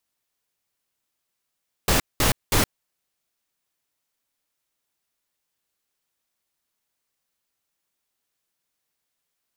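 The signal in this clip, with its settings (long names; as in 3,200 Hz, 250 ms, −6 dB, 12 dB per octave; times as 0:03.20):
noise bursts pink, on 0.12 s, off 0.20 s, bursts 3, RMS −19 dBFS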